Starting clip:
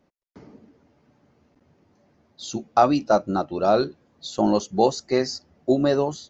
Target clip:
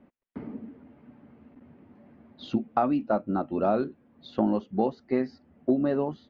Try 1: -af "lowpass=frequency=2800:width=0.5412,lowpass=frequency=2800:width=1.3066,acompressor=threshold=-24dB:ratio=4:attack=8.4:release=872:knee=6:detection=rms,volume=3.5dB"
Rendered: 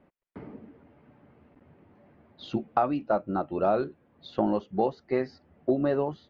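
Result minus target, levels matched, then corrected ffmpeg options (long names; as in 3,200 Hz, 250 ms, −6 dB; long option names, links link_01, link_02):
250 Hz band −3.0 dB
-af "lowpass=frequency=2800:width=0.5412,lowpass=frequency=2800:width=1.3066,equalizer=frequency=240:width_type=o:width=0.47:gain=10.5,acompressor=threshold=-24dB:ratio=4:attack=8.4:release=872:knee=6:detection=rms,volume=3.5dB"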